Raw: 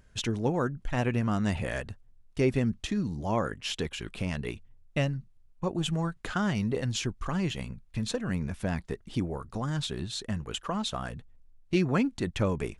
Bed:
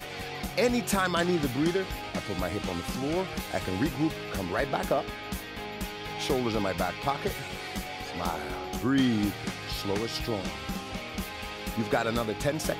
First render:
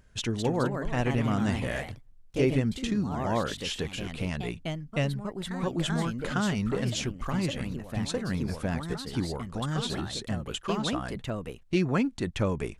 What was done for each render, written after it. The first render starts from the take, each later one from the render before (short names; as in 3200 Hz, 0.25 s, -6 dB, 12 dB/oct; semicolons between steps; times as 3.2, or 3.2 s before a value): echoes that change speed 0.231 s, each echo +2 st, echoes 2, each echo -6 dB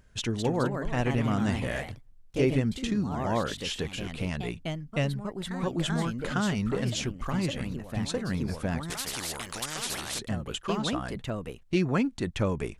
8.9–10.19 spectral compressor 4:1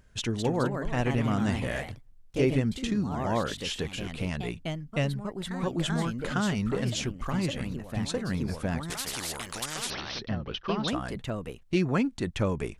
9.9–10.88 steep low-pass 5800 Hz 96 dB/oct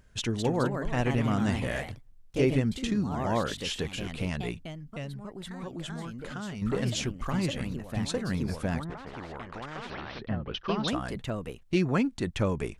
4.6–6.62 compressor 2:1, threshold -41 dBFS; 8.83–10.53 LPF 1100 Hz -> 2600 Hz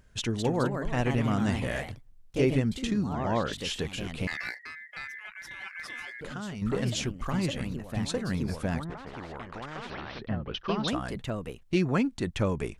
3.13–3.53 LPF 5100 Hz; 4.27–6.21 ring modulator 1900 Hz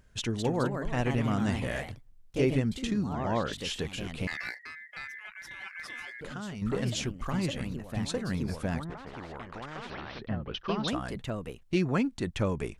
gain -1.5 dB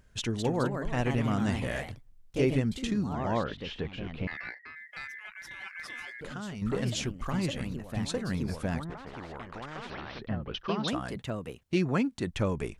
3.44–4.76 air absorption 290 m; 10.66–12.31 HPF 68 Hz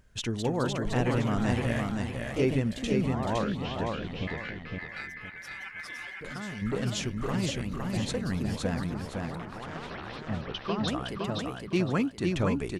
feedback echo 0.512 s, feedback 29%, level -3.5 dB